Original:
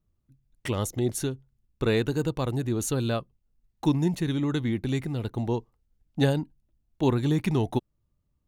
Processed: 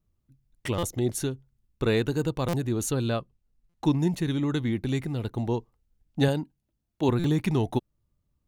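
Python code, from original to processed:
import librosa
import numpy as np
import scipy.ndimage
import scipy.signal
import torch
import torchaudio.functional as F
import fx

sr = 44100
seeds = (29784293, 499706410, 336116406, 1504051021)

y = fx.high_shelf(x, sr, hz=11000.0, db=-9.5, at=(2.91, 4.0))
y = fx.highpass(y, sr, hz=130.0, slope=6, at=(6.28, 7.09))
y = fx.buffer_glitch(y, sr, at_s=(0.78, 2.48, 3.69, 7.19), block=256, repeats=8)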